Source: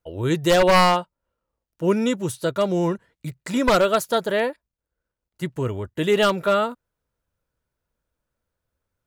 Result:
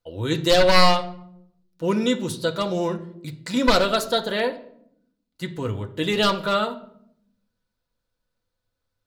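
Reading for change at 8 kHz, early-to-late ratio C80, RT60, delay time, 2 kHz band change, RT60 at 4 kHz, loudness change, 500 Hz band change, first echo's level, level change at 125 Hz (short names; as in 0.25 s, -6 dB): -1.0 dB, 18.0 dB, 0.75 s, none, 0.0 dB, 0.45 s, -1.0 dB, -2.0 dB, none, -1.5 dB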